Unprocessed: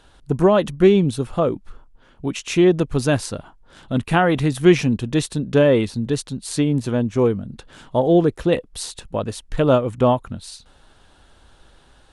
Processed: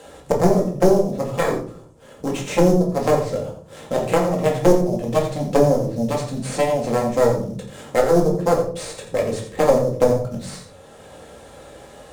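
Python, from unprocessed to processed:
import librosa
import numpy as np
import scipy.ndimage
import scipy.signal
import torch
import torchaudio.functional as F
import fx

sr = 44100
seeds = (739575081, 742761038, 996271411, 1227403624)

p1 = fx.cvsd(x, sr, bps=64000)
p2 = fx.cheby_harmonics(p1, sr, harmonics=(2, 5, 7), levels_db=(-8, -26, -11), full_scale_db=-1.5)
p3 = fx.env_lowpass_down(p2, sr, base_hz=400.0, full_db=-14.5)
p4 = scipy.signal.sosfilt(scipy.signal.butter(2, 110.0, 'highpass', fs=sr, output='sos'), p3)
p5 = fx.peak_eq(p4, sr, hz=220.0, db=3.0, octaves=0.77)
p6 = fx.notch(p5, sr, hz=1500.0, q=11.0)
p7 = fx.sample_hold(p6, sr, seeds[0], rate_hz=5800.0, jitter_pct=20)
p8 = p6 + F.gain(torch.from_numpy(p7), -4.5).numpy()
p9 = fx.tube_stage(p8, sr, drive_db=7.0, bias=0.65)
p10 = fx.graphic_eq_10(p9, sr, hz=(250, 500, 1000, 8000), db=(-8, 11, -4, 8))
p11 = p10 + fx.echo_single(p10, sr, ms=85, db=-11.0, dry=0)
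p12 = fx.room_shoebox(p11, sr, seeds[1], volume_m3=290.0, walls='furnished', distance_m=2.1)
p13 = fx.band_squash(p12, sr, depth_pct=40)
y = F.gain(torch.from_numpy(p13), -1.5).numpy()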